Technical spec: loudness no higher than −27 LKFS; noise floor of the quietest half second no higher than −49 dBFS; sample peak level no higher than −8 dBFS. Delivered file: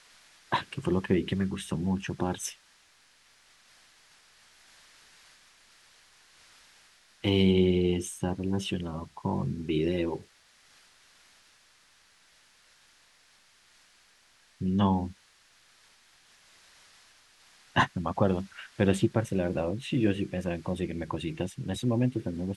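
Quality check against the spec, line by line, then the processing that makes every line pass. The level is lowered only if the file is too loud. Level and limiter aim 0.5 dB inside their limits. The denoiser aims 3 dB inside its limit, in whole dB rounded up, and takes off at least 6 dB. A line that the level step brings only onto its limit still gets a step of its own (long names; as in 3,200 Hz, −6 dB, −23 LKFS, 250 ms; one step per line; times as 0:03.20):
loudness −29.5 LKFS: in spec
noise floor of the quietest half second −63 dBFS: in spec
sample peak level −9.5 dBFS: in spec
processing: no processing needed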